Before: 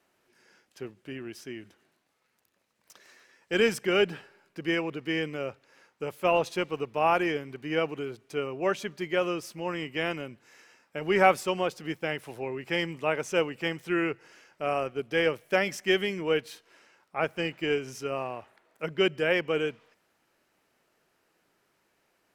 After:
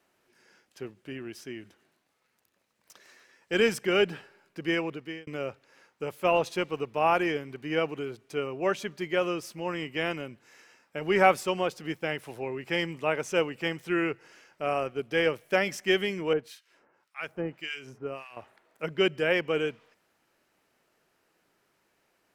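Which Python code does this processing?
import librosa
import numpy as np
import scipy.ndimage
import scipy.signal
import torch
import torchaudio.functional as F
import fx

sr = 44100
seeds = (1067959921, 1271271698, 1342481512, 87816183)

y = fx.harmonic_tremolo(x, sr, hz=1.8, depth_pct=100, crossover_hz=1400.0, at=(16.33, 18.37))
y = fx.edit(y, sr, fx.fade_out_span(start_s=4.87, length_s=0.4), tone=tone)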